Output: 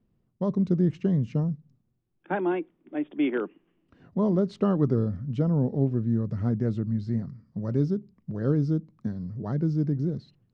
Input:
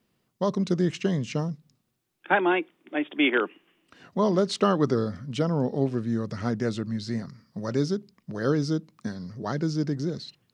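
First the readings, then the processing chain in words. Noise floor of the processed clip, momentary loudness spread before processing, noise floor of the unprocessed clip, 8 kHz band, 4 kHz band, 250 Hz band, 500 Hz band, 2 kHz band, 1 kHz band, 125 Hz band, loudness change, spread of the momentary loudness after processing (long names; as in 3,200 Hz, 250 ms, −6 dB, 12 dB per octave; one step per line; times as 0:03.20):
−72 dBFS, 12 LU, −75 dBFS, below −20 dB, below −15 dB, +1.0 dB, −3.0 dB, −12.0 dB, −8.0 dB, +4.0 dB, 0.0 dB, 10 LU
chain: spectral tilt −4.5 dB per octave
level −8.5 dB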